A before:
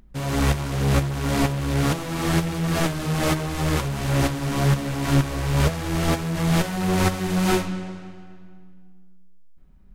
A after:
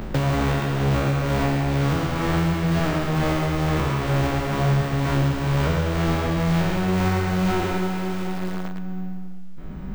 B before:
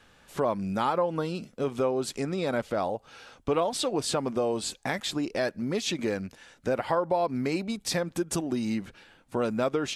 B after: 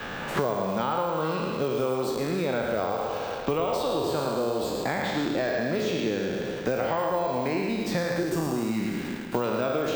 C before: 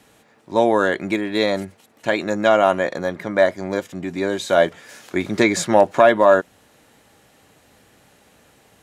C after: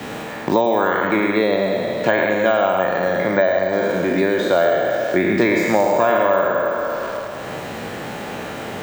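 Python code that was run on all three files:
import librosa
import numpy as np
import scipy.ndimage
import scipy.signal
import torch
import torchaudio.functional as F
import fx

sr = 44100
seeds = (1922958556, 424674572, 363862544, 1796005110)

p1 = fx.spec_trails(x, sr, decay_s=1.51)
p2 = fx.quant_dither(p1, sr, seeds[0], bits=6, dither='none')
p3 = p1 + (p2 * librosa.db_to_amplitude(-5.5))
p4 = fx.high_shelf(p3, sr, hz=4300.0, db=-11.5)
p5 = np.repeat(scipy.signal.resample_poly(p4, 1, 2), 2)[:len(p4)]
p6 = fx.peak_eq(p5, sr, hz=270.0, db=-3.0, octaves=0.22)
p7 = p6 + fx.echo_single(p6, sr, ms=108, db=-5.5, dry=0)
p8 = fx.band_squash(p7, sr, depth_pct=100)
y = p8 * librosa.db_to_amplitude(-7.0)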